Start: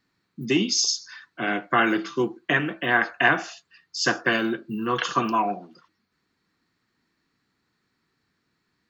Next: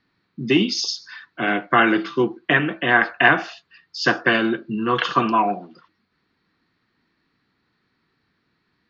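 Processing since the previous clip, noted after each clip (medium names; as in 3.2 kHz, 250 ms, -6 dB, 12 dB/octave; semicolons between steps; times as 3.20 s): low-pass 4.6 kHz 24 dB/octave; trim +4.5 dB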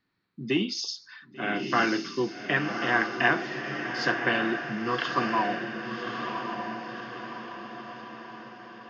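echo that smears into a reverb 1139 ms, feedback 52%, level -5.5 dB; trim -8.5 dB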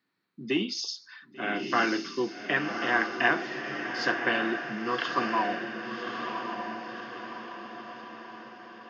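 high-pass 190 Hz 12 dB/octave; trim -1 dB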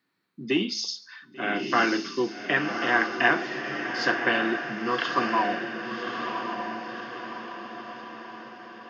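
de-hum 215.2 Hz, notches 35; trim +3 dB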